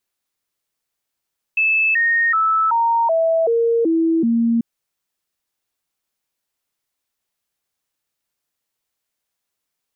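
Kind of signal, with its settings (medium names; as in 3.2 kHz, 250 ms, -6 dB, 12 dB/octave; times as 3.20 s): stepped sine 2.62 kHz down, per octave 2, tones 8, 0.38 s, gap 0.00 s -13.5 dBFS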